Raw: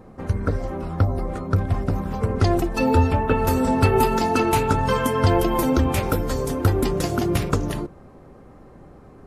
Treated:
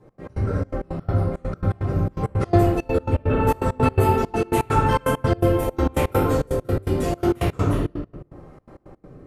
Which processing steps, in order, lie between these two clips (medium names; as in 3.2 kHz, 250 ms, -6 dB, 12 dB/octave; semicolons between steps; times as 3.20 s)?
rotary cabinet horn 6.7 Hz, later 0.8 Hz, at 1.00 s; reverberation RT60 1.2 s, pre-delay 3 ms, DRR -12 dB; dynamic bell 5.1 kHz, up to -7 dB, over -42 dBFS, Q 1.9; trance gate "x.x.xxx." 166 bpm -24 dB; 3.29–3.94 s: treble shelf 9.2 kHz -> 4.6 kHz -6 dB; trim -9 dB